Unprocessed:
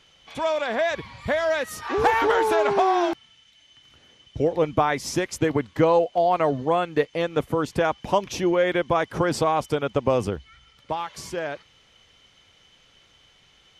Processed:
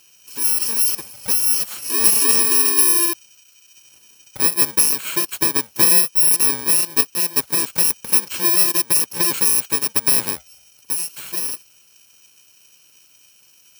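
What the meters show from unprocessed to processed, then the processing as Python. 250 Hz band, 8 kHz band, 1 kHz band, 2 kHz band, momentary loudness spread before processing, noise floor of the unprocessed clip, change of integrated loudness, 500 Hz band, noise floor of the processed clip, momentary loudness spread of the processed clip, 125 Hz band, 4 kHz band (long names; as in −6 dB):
−4.5 dB, +23.5 dB, −9.0 dB, 0.0 dB, 11 LU, −58 dBFS, +8.5 dB, −12.0 dB, −53 dBFS, 11 LU, −7.0 dB, +11.5 dB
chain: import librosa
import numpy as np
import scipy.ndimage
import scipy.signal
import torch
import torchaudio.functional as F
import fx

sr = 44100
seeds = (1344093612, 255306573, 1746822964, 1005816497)

y = fx.bit_reversed(x, sr, seeds[0], block=64)
y = fx.highpass(y, sr, hz=610.0, slope=6)
y = fx.notch(y, sr, hz=1200.0, q=22.0)
y = F.gain(torch.from_numpy(y), 5.5).numpy()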